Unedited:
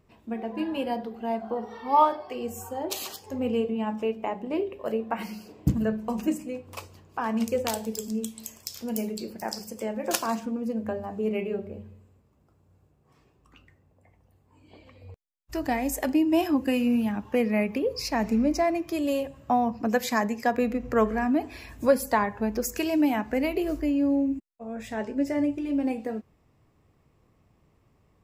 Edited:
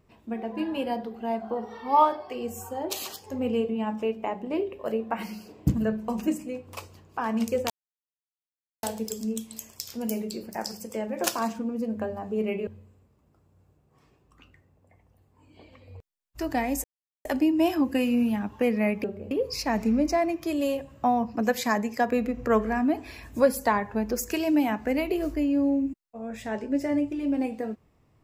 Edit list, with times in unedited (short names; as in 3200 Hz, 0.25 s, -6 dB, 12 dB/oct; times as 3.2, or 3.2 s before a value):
7.7 insert silence 1.13 s
11.54–11.81 move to 17.77
15.98 insert silence 0.41 s